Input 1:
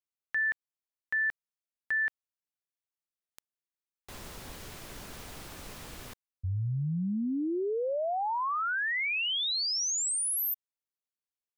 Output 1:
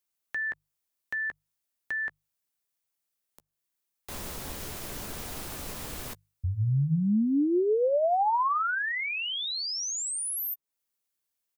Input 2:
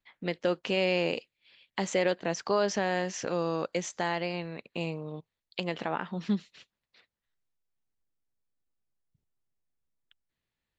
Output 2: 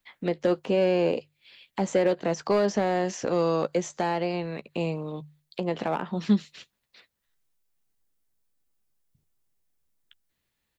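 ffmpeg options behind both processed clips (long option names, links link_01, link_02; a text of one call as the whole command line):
ffmpeg -i in.wav -filter_complex "[0:a]highshelf=frequency=7400:gain=8,bandreject=frequency=50:width_type=h:width=6,bandreject=frequency=100:width_type=h:width=6,bandreject=frequency=150:width_type=h:width=6,acrossover=split=470|1100[link_01][link_02][link_03];[link_02]volume=30.5dB,asoftclip=hard,volume=-30.5dB[link_04];[link_03]acompressor=threshold=-37dB:ratio=10:attack=0.13:release=214:knee=6:detection=rms[link_05];[link_01][link_04][link_05]amix=inputs=3:normalize=0,asplit=2[link_06][link_07];[link_07]adelay=14,volume=-14dB[link_08];[link_06][link_08]amix=inputs=2:normalize=0,volume=6dB" out.wav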